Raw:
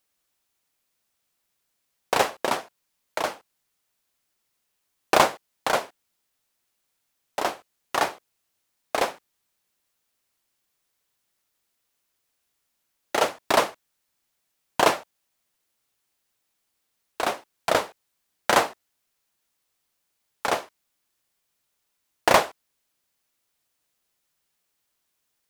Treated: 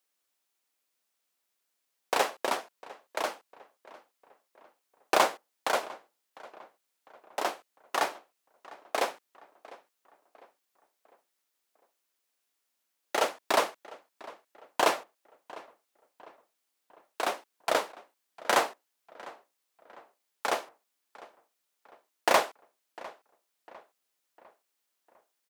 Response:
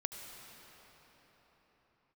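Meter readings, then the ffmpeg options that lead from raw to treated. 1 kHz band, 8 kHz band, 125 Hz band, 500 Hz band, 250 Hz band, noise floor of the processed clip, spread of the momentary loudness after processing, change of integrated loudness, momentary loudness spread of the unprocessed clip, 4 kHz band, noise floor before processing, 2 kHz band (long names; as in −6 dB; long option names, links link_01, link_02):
−5.0 dB, −4.5 dB, below −10 dB, −5.0 dB, −7.0 dB, −81 dBFS, 22 LU, −5.0 dB, 12 LU, −5.0 dB, −77 dBFS, −4.5 dB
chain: -filter_complex "[0:a]highpass=270,asplit=2[link_01][link_02];[link_02]asoftclip=type=hard:threshold=-17.5dB,volume=-10dB[link_03];[link_01][link_03]amix=inputs=2:normalize=0,asplit=2[link_04][link_05];[link_05]adelay=702,lowpass=frequency=2700:poles=1,volume=-19.5dB,asplit=2[link_06][link_07];[link_07]adelay=702,lowpass=frequency=2700:poles=1,volume=0.47,asplit=2[link_08][link_09];[link_09]adelay=702,lowpass=frequency=2700:poles=1,volume=0.47,asplit=2[link_10][link_11];[link_11]adelay=702,lowpass=frequency=2700:poles=1,volume=0.47[link_12];[link_04][link_06][link_08][link_10][link_12]amix=inputs=5:normalize=0,volume=-6.5dB"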